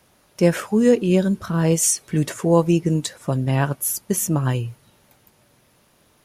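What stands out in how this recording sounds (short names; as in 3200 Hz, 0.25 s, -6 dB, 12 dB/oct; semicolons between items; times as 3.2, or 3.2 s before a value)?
noise floor -59 dBFS; spectral tilt -5.0 dB/oct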